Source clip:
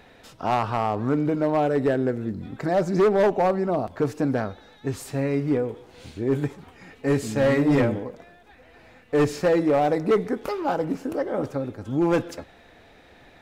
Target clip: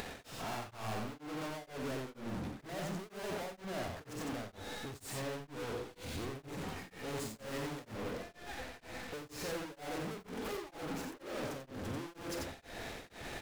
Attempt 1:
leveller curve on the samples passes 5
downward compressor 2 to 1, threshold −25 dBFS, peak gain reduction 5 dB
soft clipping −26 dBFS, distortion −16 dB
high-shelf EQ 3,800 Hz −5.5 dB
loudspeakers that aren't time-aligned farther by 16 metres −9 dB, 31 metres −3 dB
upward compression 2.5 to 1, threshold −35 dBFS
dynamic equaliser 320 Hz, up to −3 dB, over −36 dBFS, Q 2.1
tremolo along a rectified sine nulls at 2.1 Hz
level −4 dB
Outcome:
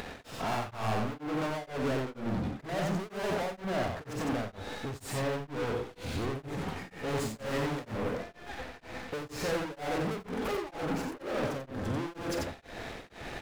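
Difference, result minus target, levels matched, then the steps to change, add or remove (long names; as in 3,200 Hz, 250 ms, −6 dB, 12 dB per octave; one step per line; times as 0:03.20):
8,000 Hz band −5.0 dB; soft clipping: distortion −6 dB
change: soft clipping −36 dBFS, distortion −10 dB
remove: high-shelf EQ 3,800 Hz −5.5 dB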